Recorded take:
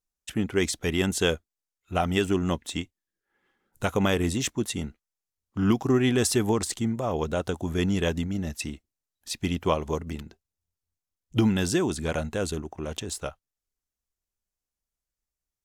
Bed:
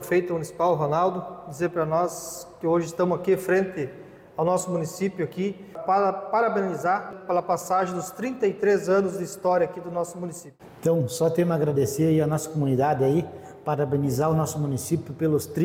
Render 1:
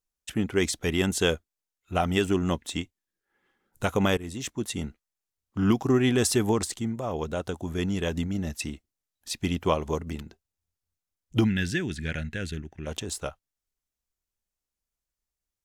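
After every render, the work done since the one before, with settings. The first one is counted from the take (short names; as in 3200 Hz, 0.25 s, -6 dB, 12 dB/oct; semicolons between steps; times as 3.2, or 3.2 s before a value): 4.17–4.85 fade in, from -15.5 dB; 6.66–8.12 gain -3 dB; 11.44–12.87 EQ curve 160 Hz 0 dB, 630 Hz -13 dB, 1100 Hz -18 dB, 1700 Hz +6 dB, 7700 Hz -10 dB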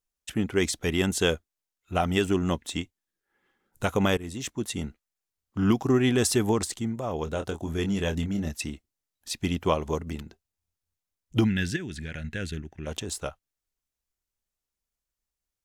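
7.24–8.48 doubler 25 ms -8 dB; 11.76–12.24 compressor 4:1, threshold -32 dBFS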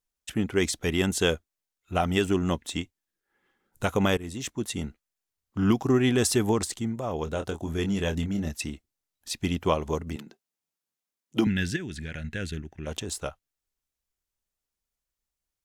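10.16–11.47 HPF 170 Hz 24 dB/oct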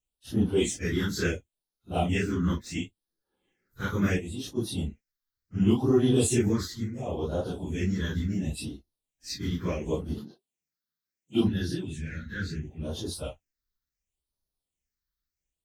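phase scrambler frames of 0.1 s; phaser stages 6, 0.71 Hz, lowest notch 680–2300 Hz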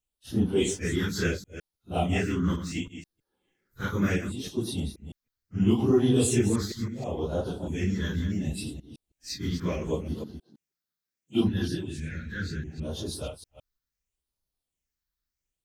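reverse delay 0.16 s, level -10 dB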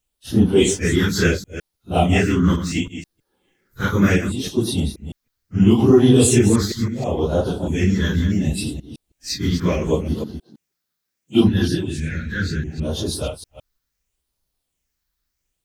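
gain +10 dB; limiter -3 dBFS, peak gain reduction 2.5 dB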